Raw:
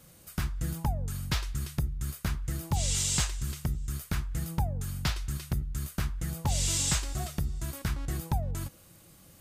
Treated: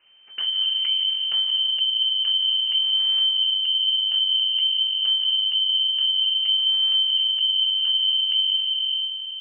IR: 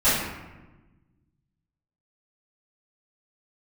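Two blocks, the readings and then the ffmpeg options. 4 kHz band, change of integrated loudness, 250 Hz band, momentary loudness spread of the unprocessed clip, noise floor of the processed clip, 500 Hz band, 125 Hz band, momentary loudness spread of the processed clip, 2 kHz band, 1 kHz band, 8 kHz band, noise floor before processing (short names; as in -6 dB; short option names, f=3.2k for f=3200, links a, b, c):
+25.0 dB, +13.5 dB, under -30 dB, 8 LU, -32 dBFS, under -15 dB, under -40 dB, 3 LU, -2.0 dB, under -10 dB, under -40 dB, -56 dBFS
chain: -filter_complex "[0:a]asplit=2[a][b];[1:a]atrim=start_sample=2205,asetrate=48510,aresample=44100,adelay=141[c];[b][c]afir=irnorm=-1:irlink=0,volume=-26dB[d];[a][d]amix=inputs=2:normalize=0,aeval=exprs='abs(val(0))':c=same,asubboost=boost=10.5:cutoff=200,acompressor=threshold=-20dB:ratio=6,lowpass=f=2.6k:t=q:w=0.5098,lowpass=f=2.6k:t=q:w=0.6013,lowpass=f=2.6k:t=q:w=0.9,lowpass=f=2.6k:t=q:w=2.563,afreqshift=-3100"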